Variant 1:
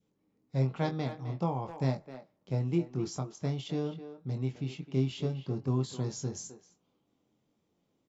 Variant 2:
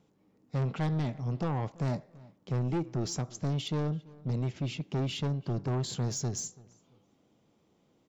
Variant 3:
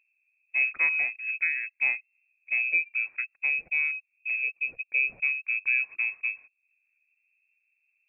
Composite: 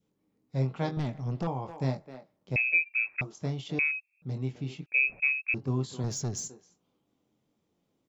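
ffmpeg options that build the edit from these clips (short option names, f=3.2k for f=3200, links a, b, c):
-filter_complex "[1:a]asplit=2[a][b];[2:a]asplit=3[c][d][e];[0:a]asplit=6[f][g][h][i][j][k];[f]atrim=end=0.972[l];[a]atrim=start=0.968:end=1.472[m];[g]atrim=start=1.468:end=2.562[n];[c]atrim=start=2.558:end=3.212[o];[h]atrim=start=3.208:end=3.792[p];[d]atrim=start=3.788:end=4.222[q];[i]atrim=start=4.218:end=4.862[r];[e]atrim=start=4.858:end=5.542[s];[j]atrim=start=5.538:end=6.042[t];[b]atrim=start=6.038:end=6.482[u];[k]atrim=start=6.478[v];[l][m]acrossfade=d=0.004:c1=hsin:c2=hsin[w];[w][n]acrossfade=d=0.004:c1=hsin:c2=hsin[x];[x][o]acrossfade=d=0.004:c1=hsin:c2=hsin[y];[y][p]acrossfade=d=0.004:c1=hsin:c2=hsin[z];[z][q]acrossfade=d=0.004:c1=hsin:c2=hsin[aa];[aa][r]acrossfade=d=0.004:c1=hsin:c2=hsin[ab];[ab][s]acrossfade=d=0.004:c1=hsin:c2=hsin[ac];[ac][t]acrossfade=d=0.004:c1=hsin:c2=hsin[ad];[ad][u]acrossfade=d=0.004:c1=hsin:c2=hsin[ae];[ae][v]acrossfade=d=0.004:c1=hsin:c2=hsin"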